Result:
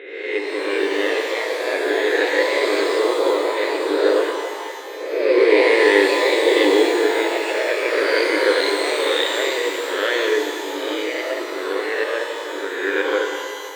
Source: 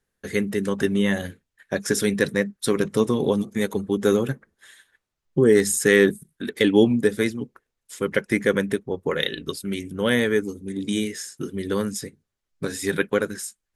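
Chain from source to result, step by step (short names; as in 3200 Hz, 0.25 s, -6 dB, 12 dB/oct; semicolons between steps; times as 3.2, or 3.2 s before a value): spectral swells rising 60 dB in 1.19 s; brick-wall FIR band-pass 290–4100 Hz; echoes that change speed 0.439 s, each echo +2 st, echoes 2; shimmer reverb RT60 2.1 s, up +12 st, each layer -8 dB, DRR 3 dB; gain -1.5 dB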